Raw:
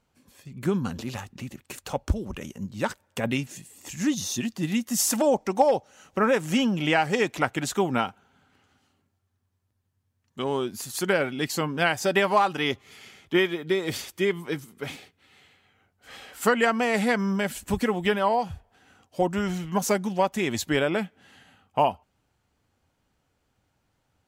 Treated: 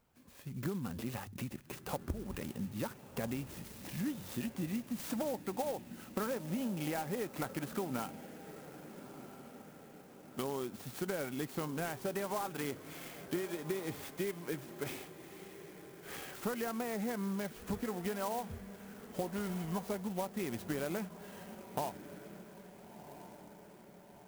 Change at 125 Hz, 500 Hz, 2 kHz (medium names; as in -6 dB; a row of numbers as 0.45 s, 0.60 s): -9.5 dB, -13.5 dB, -17.0 dB